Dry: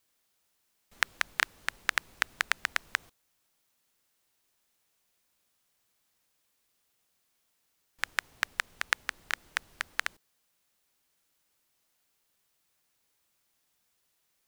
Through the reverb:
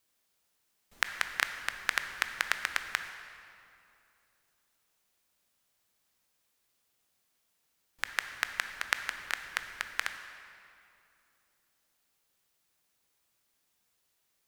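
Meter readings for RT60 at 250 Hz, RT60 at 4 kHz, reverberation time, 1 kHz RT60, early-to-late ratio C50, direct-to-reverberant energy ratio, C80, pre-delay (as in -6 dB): 3.1 s, 1.9 s, 2.7 s, 2.6 s, 8.5 dB, 7.5 dB, 9.5 dB, 17 ms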